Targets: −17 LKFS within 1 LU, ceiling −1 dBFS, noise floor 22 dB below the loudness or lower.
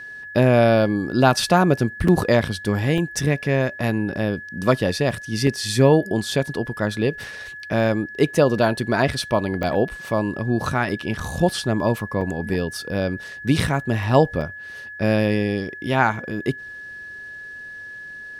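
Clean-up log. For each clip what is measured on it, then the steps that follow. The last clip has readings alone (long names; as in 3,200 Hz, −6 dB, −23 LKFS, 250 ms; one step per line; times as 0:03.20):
number of dropouts 7; longest dropout 3.8 ms; interfering tone 1,700 Hz; level of the tone −34 dBFS; integrated loudness −21.0 LKFS; sample peak −2.0 dBFS; target loudness −17.0 LKFS
→ repair the gap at 0:02.08/0:02.98/0:05.47/0:09.63/0:11.20/0:12.21/0:14.41, 3.8 ms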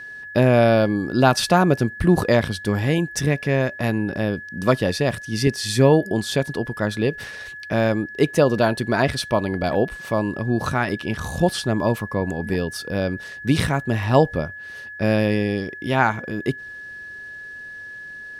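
number of dropouts 0; interfering tone 1,700 Hz; level of the tone −34 dBFS
→ notch filter 1,700 Hz, Q 30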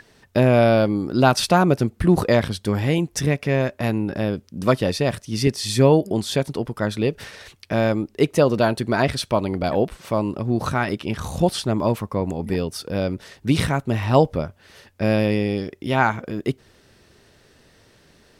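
interfering tone none found; integrated loudness −21.5 LKFS; sample peak −2.5 dBFS; target loudness −17.0 LKFS
→ level +4.5 dB
brickwall limiter −1 dBFS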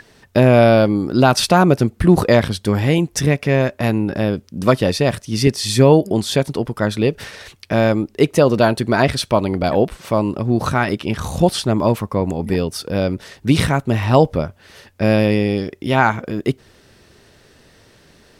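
integrated loudness −17.0 LKFS; sample peak −1.0 dBFS; background noise floor −52 dBFS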